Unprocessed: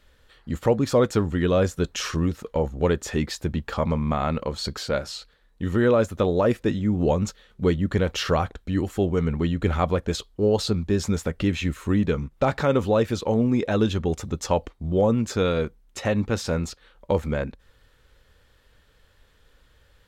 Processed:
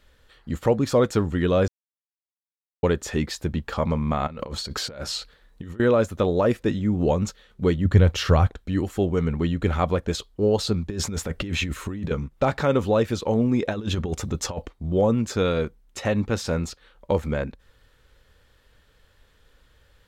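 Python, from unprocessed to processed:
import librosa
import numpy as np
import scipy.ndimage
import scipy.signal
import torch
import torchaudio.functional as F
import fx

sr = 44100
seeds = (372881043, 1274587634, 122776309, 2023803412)

y = fx.over_compress(x, sr, threshold_db=-34.0, ratio=-1.0, at=(4.27, 5.8))
y = fx.peak_eq(y, sr, hz=93.0, db=11.5, octaves=1.3, at=(7.85, 8.47))
y = fx.over_compress(y, sr, threshold_db=-28.0, ratio=-1.0, at=(10.9, 12.11))
y = fx.over_compress(y, sr, threshold_db=-25.0, ratio=-0.5, at=(13.68, 14.62))
y = fx.edit(y, sr, fx.silence(start_s=1.68, length_s=1.15), tone=tone)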